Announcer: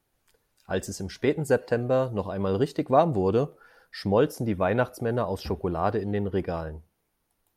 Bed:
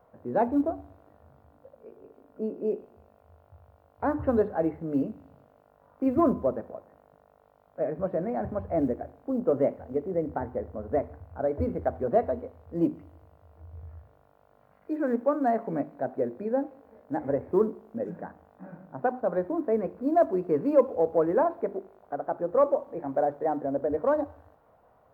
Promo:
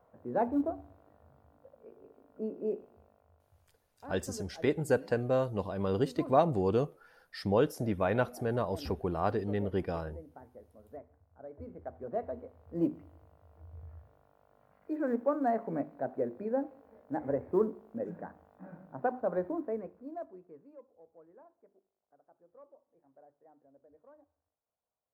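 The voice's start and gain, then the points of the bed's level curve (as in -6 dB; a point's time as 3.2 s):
3.40 s, -5.0 dB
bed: 3.03 s -5 dB
4 s -20.5 dB
11.38 s -20.5 dB
12.79 s -4.5 dB
19.49 s -4.5 dB
20.84 s -34 dB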